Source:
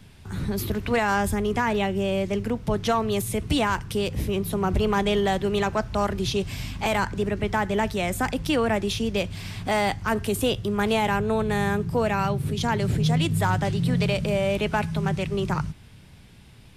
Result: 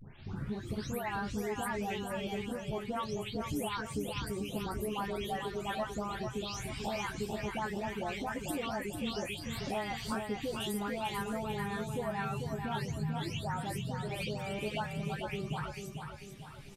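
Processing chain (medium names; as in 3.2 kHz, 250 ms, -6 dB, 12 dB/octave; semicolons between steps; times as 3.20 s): delay that grows with frequency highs late, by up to 362 ms; reverb removal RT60 1.3 s; compression 6:1, threshold -36 dBFS, peak gain reduction 15 dB; doubling 14 ms -7 dB; on a send: feedback delay 443 ms, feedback 47%, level -6 dB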